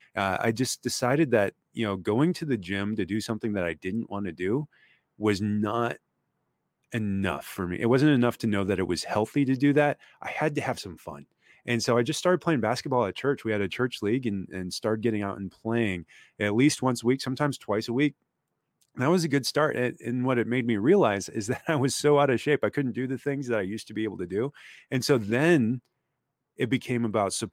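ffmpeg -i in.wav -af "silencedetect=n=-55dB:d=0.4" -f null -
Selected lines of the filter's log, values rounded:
silence_start: 5.97
silence_end: 6.92 | silence_duration: 0.94
silence_start: 18.12
silence_end: 18.82 | silence_duration: 0.69
silence_start: 25.86
silence_end: 26.58 | silence_duration: 0.72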